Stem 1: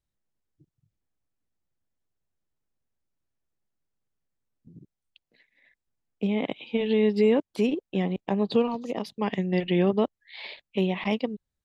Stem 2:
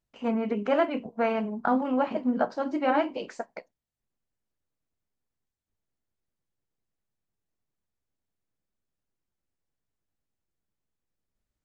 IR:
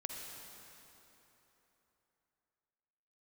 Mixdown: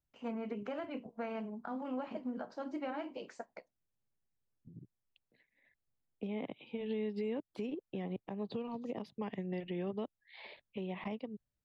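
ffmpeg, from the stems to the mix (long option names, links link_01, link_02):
-filter_complex "[0:a]lowpass=frequency=1500:poles=1,equalizer=frequency=120:width_type=o:width=0.64:gain=5,volume=-5.5dB[link_01];[1:a]alimiter=limit=-17.5dB:level=0:latency=1:release=96,volume=-10dB[link_02];[link_01][link_02]amix=inputs=2:normalize=0,acrossover=split=320|2000[link_03][link_04][link_05];[link_03]acompressor=threshold=-40dB:ratio=4[link_06];[link_04]acompressor=threshold=-39dB:ratio=4[link_07];[link_05]acompressor=threshold=-52dB:ratio=4[link_08];[link_06][link_07][link_08]amix=inputs=3:normalize=0,alimiter=level_in=5.5dB:limit=-24dB:level=0:latency=1:release=205,volume=-5.5dB"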